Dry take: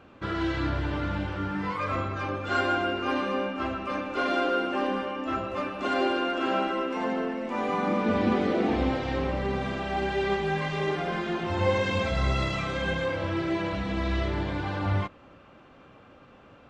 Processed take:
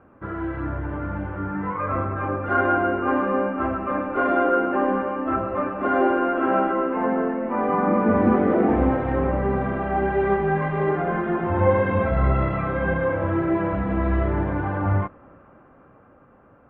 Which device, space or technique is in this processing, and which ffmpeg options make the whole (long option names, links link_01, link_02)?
action camera in a waterproof case: -af "lowpass=frequency=1700:width=0.5412,lowpass=frequency=1700:width=1.3066,dynaudnorm=framelen=200:gausssize=17:maxgain=6.5dB" -ar 44100 -c:a aac -b:a 48k